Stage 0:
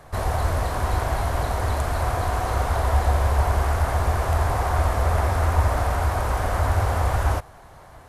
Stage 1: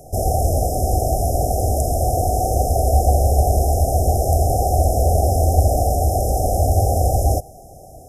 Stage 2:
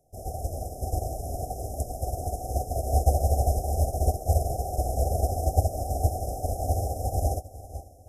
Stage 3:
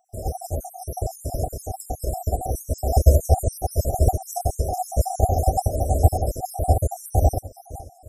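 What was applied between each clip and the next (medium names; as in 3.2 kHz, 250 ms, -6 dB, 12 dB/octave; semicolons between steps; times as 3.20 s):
bass shelf 140 Hz -4.5 dB; FFT band-reject 800–5000 Hz; treble shelf 9.9 kHz +8.5 dB; trim +8 dB
echo that smears into a reverb 500 ms, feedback 57%, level -6 dB; upward expansion 2.5:1, over -24 dBFS; trim -5 dB
random holes in the spectrogram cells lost 59%; trim +8.5 dB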